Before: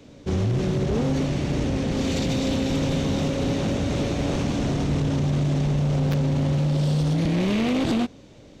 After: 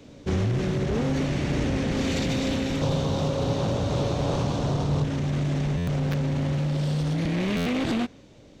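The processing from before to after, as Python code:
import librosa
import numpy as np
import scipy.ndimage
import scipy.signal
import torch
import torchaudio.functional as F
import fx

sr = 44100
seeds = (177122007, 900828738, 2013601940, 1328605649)

y = fx.graphic_eq(x, sr, hz=(125, 250, 500, 1000, 2000, 4000), db=(8, -4, 5, 8, -9, 5), at=(2.81, 5.04))
y = fx.rider(y, sr, range_db=4, speed_s=0.5)
y = fx.dynamic_eq(y, sr, hz=1800.0, q=1.2, threshold_db=-48.0, ratio=4.0, max_db=5)
y = fx.buffer_glitch(y, sr, at_s=(5.77, 7.56), block=512, repeats=8)
y = y * 10.0 ** (-3.5 / 20.0)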